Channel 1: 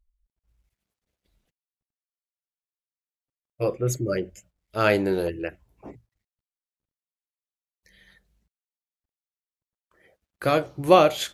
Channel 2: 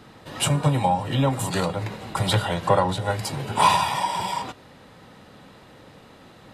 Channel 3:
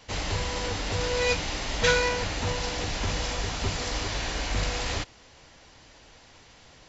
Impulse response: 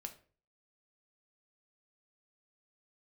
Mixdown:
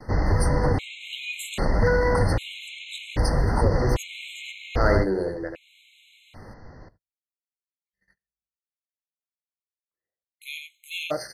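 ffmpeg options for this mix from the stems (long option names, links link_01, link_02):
-filter_complex "[0:a]volume=-4.5dB,asplit=4[link_01][link_02][link_03][link_04];[link_02]volume=-5dB[link_05];[link_03]volume=-3.5dB[link_06];[1:a]acompressor=threshold=-25dB:ratio=6,volume=0.5dB[link_07];[2:a]lowpass=2700,lowshelf=frequency=480:gain=10,alimiter=limit=-14.5dB:level=0:latency=1:release=60,volume=0dB,asplit=3[link_08][link_09][link_10];[link_09]volume=-3.5dB[link_11];[link_10]volume=-23.5dB[link_12];[link_04]apad=whole_len=288280[link_13];[link_07][link_13]sidechaincompress=threshold=-41dB:ratio=8:attack=16:release=323[link_14];[3:a]atrim=start_sample=2205[link_15];[link_05][link_11]amix=inputs=2:normalize=0[link_16];[link_16][link_15]afir=irnorm=-1:irlink=0[link_17];[link_06][link_12]amix=inputs=2:normalize=0,aecho=0:1:88:1[link_18];[link_01][link_14][link_08][link_17][link_18]amix=inputs=5:normalize=0,volume=9.5dB,asoftclip=hard,volume=-9.5dB,agate=range=-34dB:threshold=-54dB:ratio=16:detection=peak,afftfilt=real='re*gt(sin(2*PI*0.63*pts/sr)*(1-2*mod(floor(b*sr/1024/2100),2)),0)':imag='im*gt(sin(2*PI*0.63*pts/sr)*(1-2*mod(floor(b*sr/1024/2100),2)),0)':win_size=1024:overlap=0.75"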